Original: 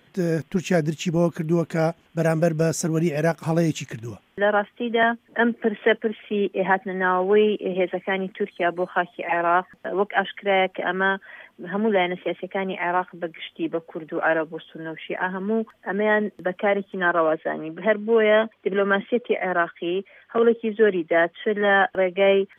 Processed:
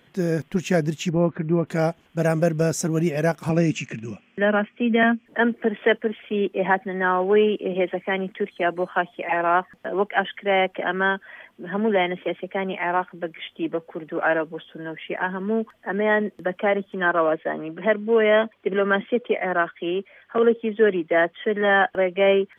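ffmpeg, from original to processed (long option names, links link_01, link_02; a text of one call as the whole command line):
ffmpeg -i in.wav -filter_complex "[0:a]asplit=3[link_01][link_02][link_03];[link_01]afade=type=out:start_time=1.09:duration=0.02[link_04];[link_02]lowpass=frequency=2500:width=0.5412,lowpass=frequency=2500:width=1.3066,afade=type=in:start_time=1.09:duration=0.02,afade=type=out:start_time=1.66:duration=0.02[link_05];[link_03]afade=type=in:start_time=1.66:duration=0.02[link_06];[link_04][link_05][link_06]amix=inputs=3:normalize=0,asettb=1/sr,asplit=3[link_07][link_08][link_09];[link_07]atrim=end=3.494[link_10];[link_08]atrim=start=3.49:end=5.26,asetpts=PTS-STARTPTS,afade=type=in:duration=0.004:curve=qsin,afade=type=out:start_time=1.766:duration=0.004:curve=qsin,highpass=110,equalizer=frequency=220:width_type=q:width=4:gain=10,equalizer=frequency=890:width_type=q:width=4:gain=-7,equalizer=frequency=2500:width_type=q:width=4:gain=9,equalizer=frequency=3800:width_type=q:width=4:gain=-10,lowpass=frequency=7500:width=0.5412,lowpass=frequency=7500:width=1.3066[link_11];[link_09]atrim=start=5.256[link_12];[link_10][link_11]acrossfade=duration=0.004:curve1=hsin:curve2=qsin[link_13];[link_13][link_12]acrossfade=duration=0.004:curve1=qsin:curve2=hsin" out.wav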